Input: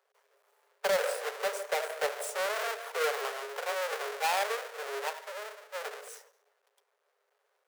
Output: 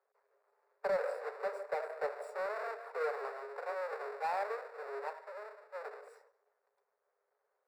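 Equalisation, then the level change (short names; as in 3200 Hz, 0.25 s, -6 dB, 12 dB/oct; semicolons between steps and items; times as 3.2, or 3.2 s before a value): running mean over 14 samples; -4.0 dB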